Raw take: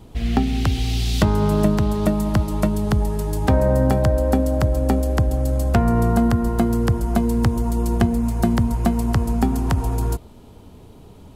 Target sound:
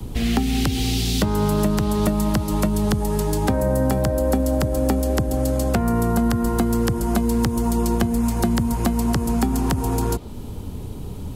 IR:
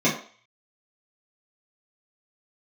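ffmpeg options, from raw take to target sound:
-filter_complex "[0:a]highshelf=frequency=5900:gain=9.5,acrossover=split=120|620|6500[link_01][link_02][link_03][link_04];[link_01]acompressor=threshold=-30dB:ratio=4[link_05];[link_02]acompressor=threshold=-30dB:ratio=4[link_06];[link_03]acompressor=threshold=-33dB:ratio=4[link_07];[link_04]acompressor=threshold=-40dB:ratio=4[link_08];[link_05][link_06][link_07][link_08]amix=inputs=4:normalize=0,lowshelf=frequency=280:gain=9.5,acrossover=split=190|1000|3300[link_09][link_10][link_11][link_12];[link_09]acompressor=threshold=-28dB:ratio=6[link_13];[link_13][link_10][link_11][link_12]amix=inputs=4:normalize=0,bandreject=frequency=660:width=12,volume=5dB"

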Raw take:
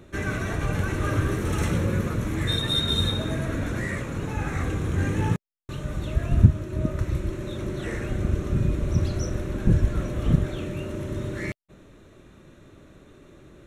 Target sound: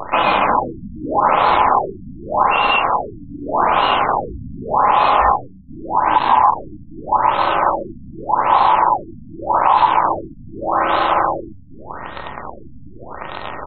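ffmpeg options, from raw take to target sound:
ffmpeg -i in.wav -filter_complex "[0:a]lowshelf=frequency=99:gain=2.5,bandreject=frequency=94.14:width_type=h:width=4,bandreject=frequency=188.28:width_type=h:width=4,bandreject=frequency=282.42:width_type=h:width=4,bandreject=frequency=376.56:width_type=h:width=4,bandreject=frequency=470.7:width_type=h:width=4,bandreject=frequency=564.84:width_type=h:width=4,bandreject=frequency=658.98:width_type=h:width=4,bandreject=frequency=753.12:width_type=h:width=4,bandreject=frequency=847.26:width_type=h:width=4,acompressor=threshold=-43dB:ratio=2,aeval=exprs='val(0)*sin(2*PI*930*n/s)':channel_layout=same,acrusher=bits=8:dc=4:mix=0:aa=0.000001,asplit=8[link_01][link_02][link_03][link_04][link_05][link_06][link_07][link_08];[link_02]adelay=152,afreqshift=67,volume=-13dB[link_09];[link_03]adelay=304,afreqshift=134,volume=-16.9dB[link_10];[link_04]adelay=456,afreqshift=201,volume=-20.8dB[link_11];[link_05]adelay=608,afreqshift=268,volume=-24.6dB[link_12];[link_06]adelay=760,afreqshift=335,volume=-28.5dB[link_13];[link_07]adelay=912,afreqshift=402,volume=-32.4dB[link_14];[link_08]adelay=1064,afreqshift=469,volume=-36.3dB[link_15];[link_01][link_09][link_10][link_11][link_12][link_13][link_14][link_15]amix=inputs=8:normalize=0,alimiter=level_in=26.5dB:limit=-1dB:release=50:level=0:latency=1,afftfilt=real='re*lt(b*sr/1024,270*pow(4300/270,0.5+0.5*sin(2*PI*0.84*pts/sr)))':imag='im*lt(b*sr/1024,270*pow(4300/270,0.5+0.5*sin(2*PI*0.84*pts/sr)))':win_size=1024:overlap=0.75,volume=-1dB" out.wav

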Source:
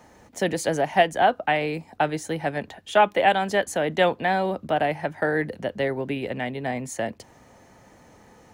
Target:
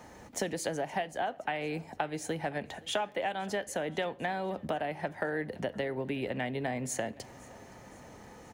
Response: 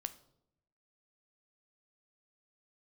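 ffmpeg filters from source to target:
-filter_complex "[0:a]acompressor=threshold=-31dB:ratio=10,aecho=1:1:519|1038|1557|2076:0.0708|0.0389|0.0214|0.0118,asplit=2[link_01][link_02];[1:a]atrim=start_sample=2205[link_03];[link_02][link_03]afir=irnorm=-1:irlink=0,volume=-1dB[link_04];[link_01][link_04]amix=inputs=2:normalize=0,volume=-3.5dB"

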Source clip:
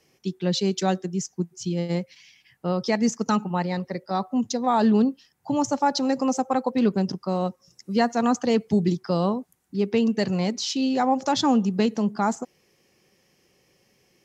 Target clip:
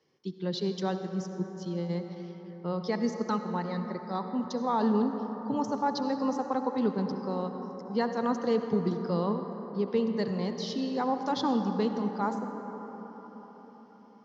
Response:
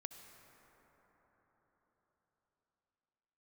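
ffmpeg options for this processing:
-filter_complex "[0:a]highpass=110,equalizer=frequency=460:width_type=q:width=4:gain=4,equalizer=frequency=680:width_type=q:width=4:gain=-5,equalizer=frequency=1000:width_type=q:width=4:gain=5,equalizer=frequency=2500:width_type=q:width=4:gain=-9,lowpass=frequency=5000:width=0.5412,lowpass=frequency=5000:width=1.3066[link_01];[1:a]atrim=start_sample=2205[link_02];[link_01][link_02]afir=irnorm=-1:irlink=0,volume=-2.5dB"

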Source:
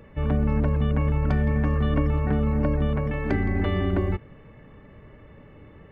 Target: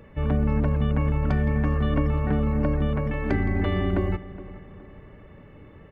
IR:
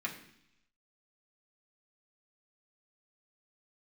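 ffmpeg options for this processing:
-filter_complex "[0:a]asplit=2[link_01][link_02];[link_02]adelay=417,lowpass=frequency=2000:poles=1,volume=-16dB,asplit=2[link_03][link_04];[link_04]adelay=417,lowpass=frequency=2000:poles=1,volume=0.44,asplit=2[link_05][link_06];[link_06]adelay=417,lowpass=frequency=2000:poles=1,volume=0.44,asplit=2[link_07][link_08];[link_08]adelay=417,lowpass=frequency=2000:poles=1,volume=0.44[link_09];[link_01][link_03][link_05][link_07][link_09]amix=inputs=5:normalize=0"

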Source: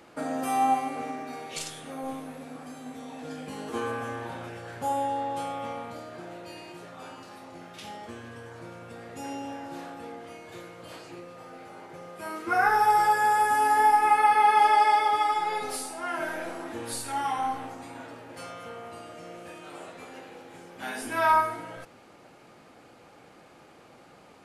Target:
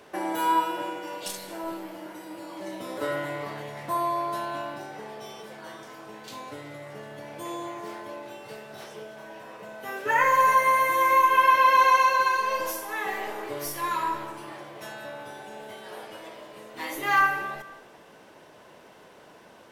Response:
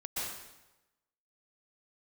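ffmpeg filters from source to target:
-filter_complex "[0:a]equalizer=frequency=410:width_type=o:width=0.43:gain=4.5,asetrate=54684,aresample=44100,asplit=2[link_01][link_02];[1:a]atrim=start_sample=2205,asetrate=38808,aresample=44100[link_03];[link_02][link_03]afir=irnorm=-1:irlink=0,volume=-17dB[link_04];[link_01][link_04]amix=inputs=2:normalize=0"

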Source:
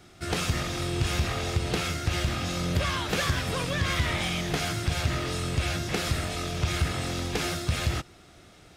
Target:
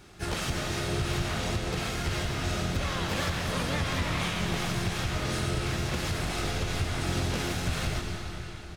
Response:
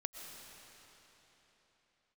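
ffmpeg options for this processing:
-filter_complex "[0:a]asplit=3[link_01][link_02][link_03];[link_02]asetrate=22050,aresample=44100,atempo=2,volume=-3dB[link_04];[link_03]asetrate=52444,aresample=44100,atempo=0.840896,volume=-4dB[link_05];[link_01][link_04][link_05]amix=inputs=3:normalize=0,alimiter=limit=-19dB:level=0:latency=1:release=345[link_06];[1:a]atrim=start_sample=2205,asetrate=48510,aresample=44100[link_07];[link_06][link_07]afir=irnorm=-1:irlink=0,volume=2dB"

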